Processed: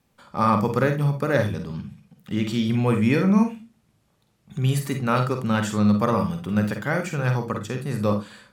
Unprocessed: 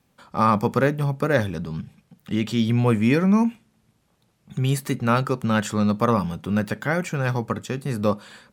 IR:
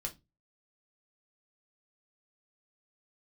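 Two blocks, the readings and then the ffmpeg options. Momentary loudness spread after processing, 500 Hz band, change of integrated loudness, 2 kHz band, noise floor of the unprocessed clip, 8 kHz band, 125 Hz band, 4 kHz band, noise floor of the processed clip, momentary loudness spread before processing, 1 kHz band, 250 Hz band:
10 LU, -1.0 dB, 0.0 dB, -1.0 dB, -66 dBFS, -1.0 dB, +0.5 dB, -1.0 dB, -67 dBFS, 10 LU, -1.0 dB, 0.0 dB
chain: -filter_complex "[0:a]asplit=2[a][b];[1:a]atrim=start_sample=2205,adelay=47[c];[b][c]afir=irnorm=-1:irlink=0,volume=-5dB[d];[a][d]amix=inputs=2:normalize=0,volume=-2dB"

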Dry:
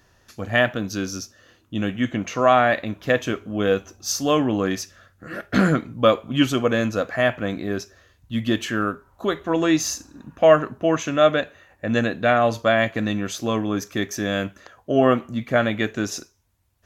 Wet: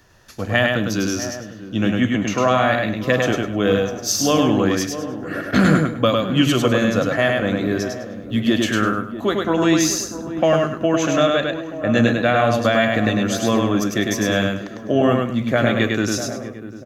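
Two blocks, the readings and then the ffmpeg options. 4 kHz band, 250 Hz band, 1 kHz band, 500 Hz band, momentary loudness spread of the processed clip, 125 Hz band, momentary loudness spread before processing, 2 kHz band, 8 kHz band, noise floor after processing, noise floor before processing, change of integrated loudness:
+5.0 dB, +5.0 dB, +1.0 dB, +1.5 dB, 9 LU, +5.5 dB, 11 LU, +3.0 dB, +5.5 dB, -35 dBFS, -60 dBFS, +3.0 dB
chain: -filter_complex "[0:a]asplit=2[a][b];[b]adelay=644,lowpass=f=840:p=1,volume=-13.5dB,asplit=2[c][d];[d]adelay=644,lowpass=f=840:p=1,volume=0.51,asplit=2[e][f];[f]adelay=644,lowpass=f=840:p=1,volume=0.51,asplit=2[g][h];[h]adelay=644,lowpass=f=840:p=1,volume=0.51,asplit=2[i][j];[j]adelay=644,lowpass=f=840:p=1,volume=0.51[k];[c][e][g][i][k]amix=inputs=5:normalize=0[l];[a][l]amix=inputs=2:normalize=0,acrossover=split=200|3000[m][n][o];[n]acompressor=threshold=-19dB:ratio=6[p];[m][p][o]amix=inputs=3:normalize=0,asplit=2[q][r];[r]aecho=0:1:102|204|306|408:0.708|0.177|0.0442|0.0111[s];[q][s]amix=inputs=2:normalize=0,volume=4dB"

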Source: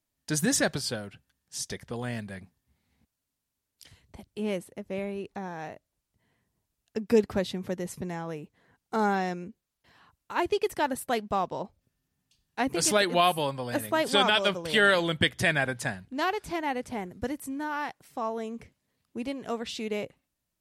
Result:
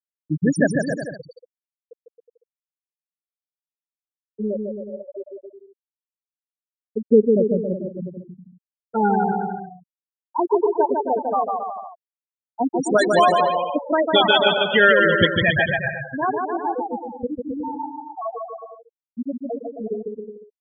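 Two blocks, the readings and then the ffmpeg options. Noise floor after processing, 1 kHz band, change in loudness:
under -85 dBFS, +8.0 dB, +8.0 dB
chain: -af "afftfilt=real='re*gte(hypot(re,im),0.224)':imag='im*gte(hypot(re,im),0.224)':win_size=1024:overlap=0.75,aecho=1:1:150|270|366|442.8|504.2:0.631|0.398|0.251|0.158|0.1,volume=8dB"

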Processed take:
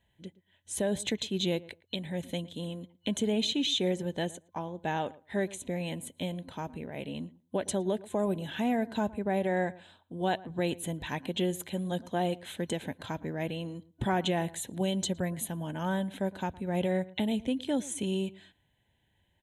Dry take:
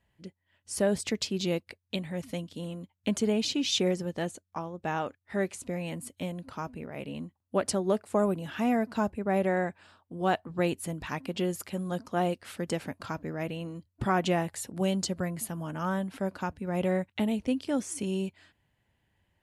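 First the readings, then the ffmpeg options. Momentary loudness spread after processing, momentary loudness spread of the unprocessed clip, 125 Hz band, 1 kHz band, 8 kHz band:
10 LU, 11 LU, -1.0 dB, -2.0 dB, -1.5 dB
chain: -filter_complex "[0:a]superequalizer=10b=0.355:13b=2:14b=0.282,alimiter=limit=-19.5dB:level=0:latency=1:release=140,asplit=2[a][b];[b]adelay=113,lowpass=f=1.7k:p=1,volume=-19.5dB,asplit=2[c][d];[d]adelay=113,lowpass=f=1.7k:p=1,volume=0.15[e];[c][e]amix=inputs=2:normalize=0[f];[a][f]amix=inputs=2:normalize=0"

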